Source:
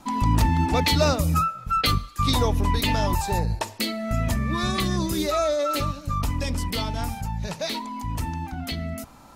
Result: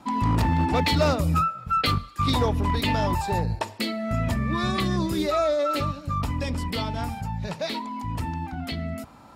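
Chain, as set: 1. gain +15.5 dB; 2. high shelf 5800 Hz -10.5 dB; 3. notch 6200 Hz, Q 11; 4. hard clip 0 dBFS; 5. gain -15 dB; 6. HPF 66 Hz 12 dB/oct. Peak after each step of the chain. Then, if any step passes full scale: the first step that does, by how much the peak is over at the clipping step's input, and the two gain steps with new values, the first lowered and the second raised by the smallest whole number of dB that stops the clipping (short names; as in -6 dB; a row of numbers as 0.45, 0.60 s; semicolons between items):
+5.5, +5.5, +5.5, 0.0, -15.0, -10.0 dBFS; step 1, 5.5 dB; step 1 +9.5 dB, step 5 -9 dB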